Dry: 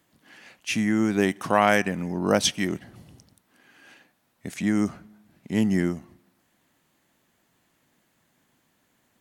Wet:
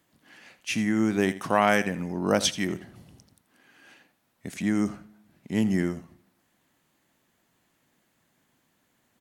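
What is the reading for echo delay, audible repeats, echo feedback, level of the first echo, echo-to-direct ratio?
82 ms, 2, 17%, -15.5 dB, -15.5 dB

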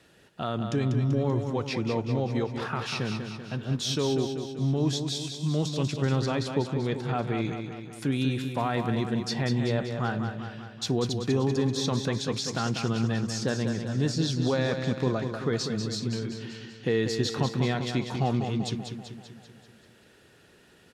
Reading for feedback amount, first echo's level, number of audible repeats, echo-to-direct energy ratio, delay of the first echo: 57%, -7.0 dB, 6, -5.5 dB, 193 ms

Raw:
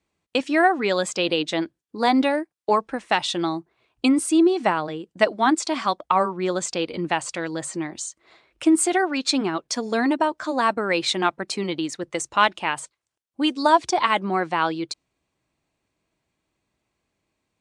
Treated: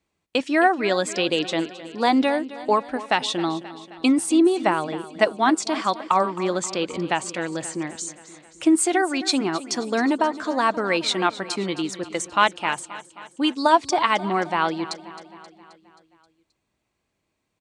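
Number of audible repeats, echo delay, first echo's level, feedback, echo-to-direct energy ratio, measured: 5, 265 ms, -16.0 dB, 59%, -14.0 dB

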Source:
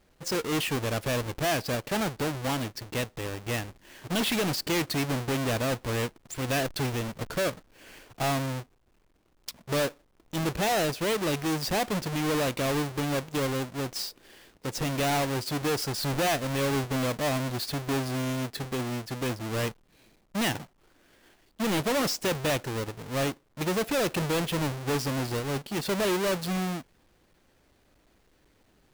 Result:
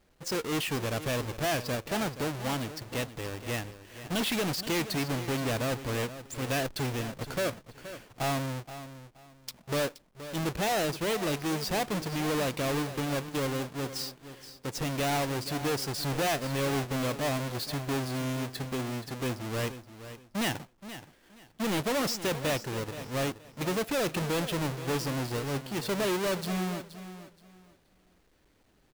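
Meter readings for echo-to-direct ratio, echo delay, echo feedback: -12.5 dB, 474 ms, 24%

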